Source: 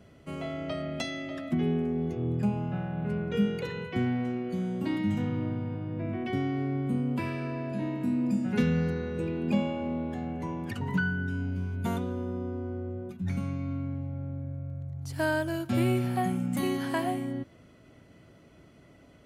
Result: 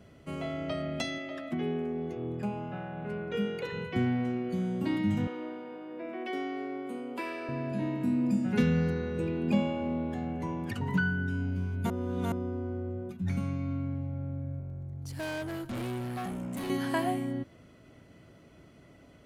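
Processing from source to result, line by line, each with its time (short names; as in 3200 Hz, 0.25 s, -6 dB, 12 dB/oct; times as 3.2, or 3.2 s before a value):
1.18–3.73 tone controls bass -10 dB, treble -4 dB
5.27–7.49 HPF 330 Hz 24 dB/oct
11.9–12.32 reverse
14.6–16.7 tube stage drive 33 dB, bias 0.3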